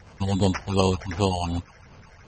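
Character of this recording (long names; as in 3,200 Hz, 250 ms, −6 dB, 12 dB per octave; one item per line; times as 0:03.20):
phaser sweep stages 6, 2.7 Hz, lowest notch 270–2,800 Hz
aliases and images of a low sample rate 3,700 Hz, jitter 0%
MP3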